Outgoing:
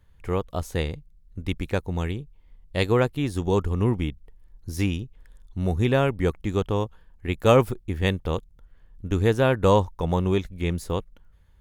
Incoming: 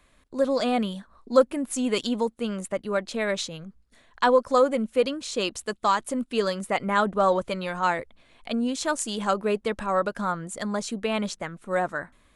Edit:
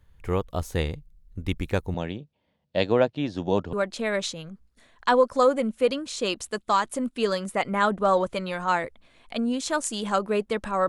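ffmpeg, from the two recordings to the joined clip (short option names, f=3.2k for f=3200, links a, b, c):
-filter_complex "[0:a]asettb=1/sr,asplit=3[a][b][c];[a]atrim=end=1.944[d];[b]atrim=start=1.94:end=3.73,asetpts=PTS-STARTPTS,afade=t=in:d=0.004:c=qsin,afade=t=out:st=1.786:d=0.004:c=qsin,highpass=f=120:w=0.5412,highpass=f=120:w=1.3066,equalizer=f=130:t=q:w=4:g=-8,equalizer=f=400:t=q:w=4:g=-5,equalizer=f=610:t=q:w=4:g=9,equalizer=f=1.2k:t=q:w=4:g=-6,equalizer=f=2.1k:t=q:w=4:g=-5,lowpass=f=5.3k:w=0.5412,lowpass=f=5.3k:w=1.3066[e];[c]atrim=start=3.726[f];[d][e]acrossfade=d=0.004:c1=hsin:c2=qsin[g];[g][f]acrossfade=d=0.004:c1=qsin:c2=hsin,apad=whole_dur=10.88,atrim=end=10.88,atrim=end=3.732[h];[1:a]atrim=start=2.878:end=10.03[i];[h][i]acrossfade=d=0.004:c1=hsin:c2=hsin"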